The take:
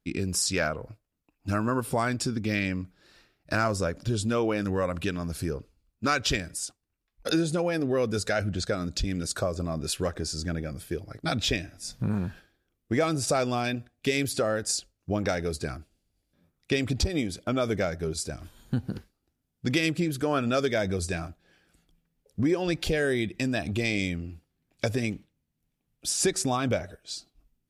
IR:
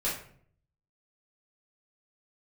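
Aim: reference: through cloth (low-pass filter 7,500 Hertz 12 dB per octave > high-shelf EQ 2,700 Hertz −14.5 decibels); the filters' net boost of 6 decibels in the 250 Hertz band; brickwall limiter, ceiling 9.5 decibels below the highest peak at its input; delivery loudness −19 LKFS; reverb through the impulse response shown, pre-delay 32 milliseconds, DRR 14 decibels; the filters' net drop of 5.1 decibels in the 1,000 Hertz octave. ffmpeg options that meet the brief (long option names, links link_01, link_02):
-filter_complex "[0:a]equalizer=frequency=250:width_type=o:gain=8,equalizer=frequency=1000:width_type=o:gain=-5.5,alimiter=limit=-18.5dB:level=0:latency=1,asplit=2[link_01][link_02];[1:a]atrim=start_sample=2205,adelay=32[link_03];[link_02][link_03]afir=irnorm=-1:irlink=0,volume=-21dB[link_04];[link_01][link_04]amix=inputs=2:normalize=0,lowpass=7500,highshelf=frequency=2700:gain=-14.5,volume=10.5dB"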